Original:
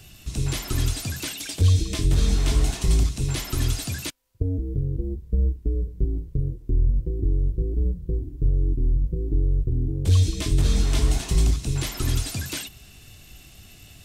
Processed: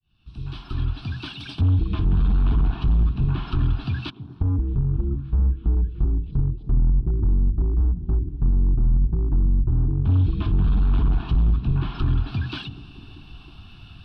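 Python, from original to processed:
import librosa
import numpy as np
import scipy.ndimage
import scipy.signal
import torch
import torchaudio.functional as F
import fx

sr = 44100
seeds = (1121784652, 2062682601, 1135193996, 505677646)

y = fx.fade_in_head(x, sr, length_s=1.7)
y = np.clip(10.0 ** (20.5 / 20.0) * y, -1.0, 1.0) / 10.0 ** (20.5 / 20.0)
y = scipy.signal.sosfilt(scipy.signal.butter(2, 3100.0, 'lowpass', fs=sr, output='sos'), y)
y = fx.echo_stepped(y, sr, ms=316, hz=150.0, octaves=0.7, feedback_pct=70, wet_db=-9.0)
y = fx.env_lowpass_down(y, sr, base_hz=1800.0, full_db=-23.0)
y = fx.fixed_phaser(y, sr, hz=2000.0, stages=6)
y = y * librosa.db_to_amplitude(5.5)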